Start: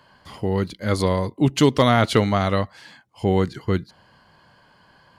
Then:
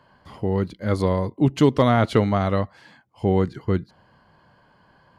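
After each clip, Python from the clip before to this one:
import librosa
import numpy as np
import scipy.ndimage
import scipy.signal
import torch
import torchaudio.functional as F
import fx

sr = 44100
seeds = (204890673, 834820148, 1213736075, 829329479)

y = fx.high_shelf(x, sr, hz=2100.0, db=-10.5)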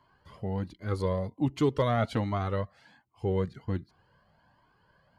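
y = fx.comb_cascade(x, sr, direction='rising', hz=1.3)
y = y * librosa.db_to_amplitude(-4.5)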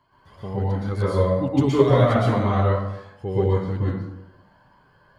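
y = fx.rev_plate(x, sr, seeds[0], rt60_s=0.9, hf_ratio=0.55, predelay_ms=105, drr_db=-8.0)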